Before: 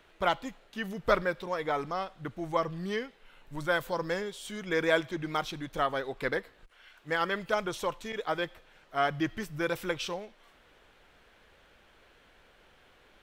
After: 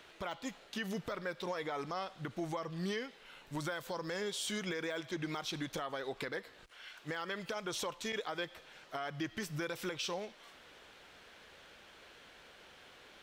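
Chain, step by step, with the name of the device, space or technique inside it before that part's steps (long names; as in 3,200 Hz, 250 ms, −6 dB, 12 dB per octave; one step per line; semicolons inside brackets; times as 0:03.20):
broadcast voice chain (high-pass filter 120 Hz 6 dB per octave; de-essing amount 95%; downward compressor 4 to 1, threshold −36 dBFS, peak gain reduction 13.5 dB; parametric band 5,300 Hz +6 dB 1.7 octaves; brickwall limiter −31 dBFS, peak gain reduction 9 dB)
level +2.5 dB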